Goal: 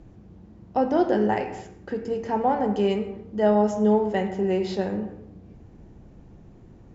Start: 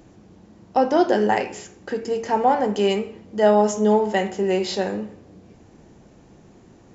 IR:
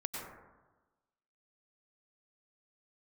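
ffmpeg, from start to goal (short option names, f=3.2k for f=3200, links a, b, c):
-filter_complex "[0:a]aemphasis=mode=reproduction:type=bsi,asplit=2[a][b];[1:a]atrim=start_sample=2205,afade=t=out:st=0.34:d=0.01,atrim=end_sample=15435[c];[b][c]afir=irnorm=-1:irlink=0,volume=-10dB[d];[a][d]amix=inputs=2:normalize=0,volume=-7.5dB"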